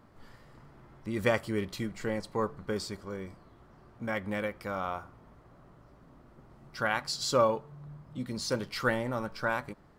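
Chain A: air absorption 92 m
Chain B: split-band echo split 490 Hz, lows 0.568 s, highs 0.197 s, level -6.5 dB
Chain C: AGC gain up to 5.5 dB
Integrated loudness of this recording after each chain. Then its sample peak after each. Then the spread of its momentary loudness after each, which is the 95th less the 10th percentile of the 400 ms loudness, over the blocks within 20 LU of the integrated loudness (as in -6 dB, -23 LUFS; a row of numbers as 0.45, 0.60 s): -33.5, -32.0, -27.0 LUFS; -13.0, -12.0, -7.0 dBFS; 13, 17, 13 LU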